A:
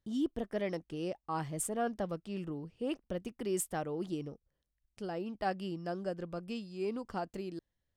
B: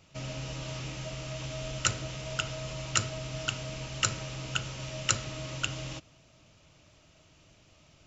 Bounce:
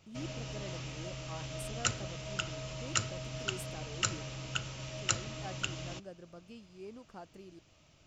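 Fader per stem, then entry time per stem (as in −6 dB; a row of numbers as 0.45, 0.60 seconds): −11.5, −4.0 decibels; 0.00, 0.00 seconds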